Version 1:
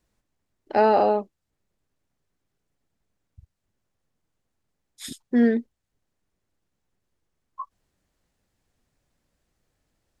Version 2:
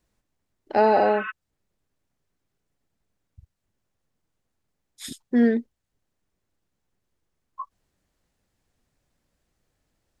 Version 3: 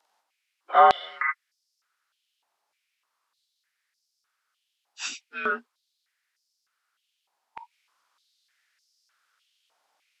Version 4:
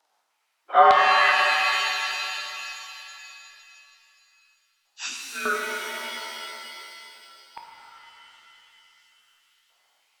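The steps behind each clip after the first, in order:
spectral repair 0.88–1.28, 1000–3700 Hz before
inharmonic rescaling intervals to 89%; stepped high-pass 3.3 Hz 820–5100 Hz; gain +6.5 dB
shimmer reverb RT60 2.9 s, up +7 st, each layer -2 dB, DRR 1 dB

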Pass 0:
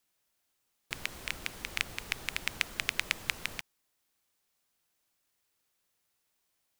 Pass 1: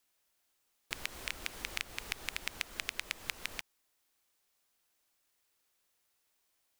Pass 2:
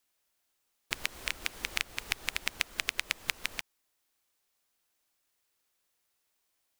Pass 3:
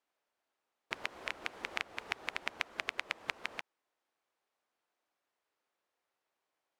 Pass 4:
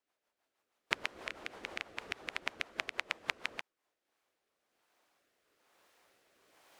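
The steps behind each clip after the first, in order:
bell 140 Hz -7 dB 1.3 oct; compressor 4:1, threshold -34 dBFS, peak gain reduction 10 dB; gain +1 dB
upward expander 1.5:1, over -49 dBFS; gain +6.5 dB
band-pass 680 Hz, Q 0.65; gain +2.5 dB
recorder AGC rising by 7.2 dB/s; rotary speaker horn 6.3 Hz, later 1.1 Hz, at 3.4; gain +1.5 dB

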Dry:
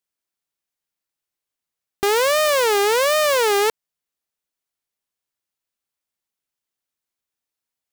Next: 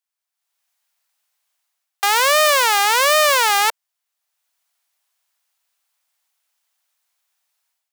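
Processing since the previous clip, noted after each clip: steep high-pass 630 Hz 36 dB/oct; AGC gain up to 14 dB; gain -1 dB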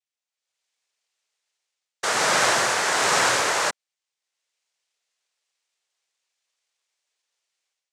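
noise vocoder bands 3; gain -5.5 dB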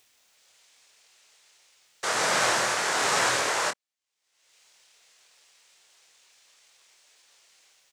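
upward compressor, threshold -37 dBFS; doubler 25 ms -7.5 dB; gain -4.5 dB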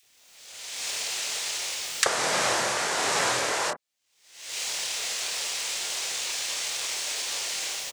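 recorder AGC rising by 34 dB/s; bands offset in time highs, lows 30 ms, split 1400 Hz

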